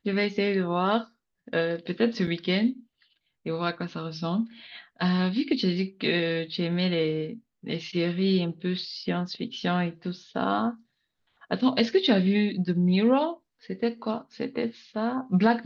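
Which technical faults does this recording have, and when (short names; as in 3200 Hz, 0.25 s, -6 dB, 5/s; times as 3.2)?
2.27–2.28 gap 5.2 ms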